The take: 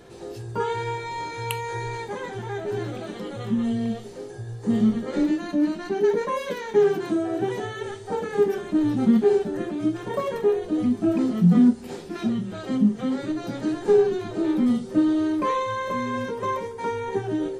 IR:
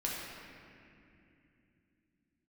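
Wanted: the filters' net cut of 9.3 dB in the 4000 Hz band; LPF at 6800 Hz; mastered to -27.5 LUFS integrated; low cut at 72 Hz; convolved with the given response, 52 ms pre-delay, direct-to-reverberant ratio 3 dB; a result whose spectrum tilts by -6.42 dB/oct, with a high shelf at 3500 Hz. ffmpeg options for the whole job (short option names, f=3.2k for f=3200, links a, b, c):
-filter_complex "[0:a]highpass=72,lowpass=6.8k,highshelf=f=3.5k:g=-5.5,equalizer=f=4k:t=o:g=-8.5,asplit=2[a][b];[1:a]atrim=start_sample=2205,adelay=52[c];[b][c]afir=irnorm=-1:irlink=0,volume=-7.5dB[d];[a][d]amix=inputs=2:normalize=0,volume=-4.5dB"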